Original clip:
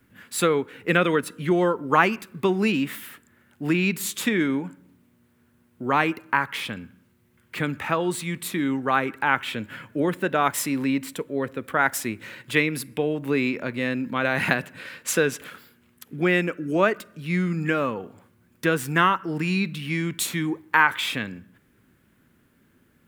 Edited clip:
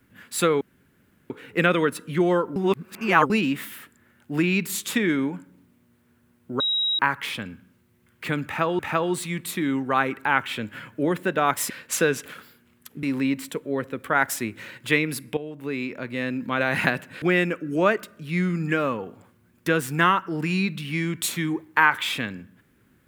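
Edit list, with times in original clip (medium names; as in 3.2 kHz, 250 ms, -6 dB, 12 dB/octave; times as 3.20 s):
0.61 s: insert room tone 0.69 s
1.87–2.61 s: reverse
5.91–6.30 s: bleep 3.83 kHz -20.5 dBFS
7.76–8.10 s: loop, 2 plays
13.01–14.18 s: fade in, from -12 dB
14.86–16.19 s: move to 10.67 s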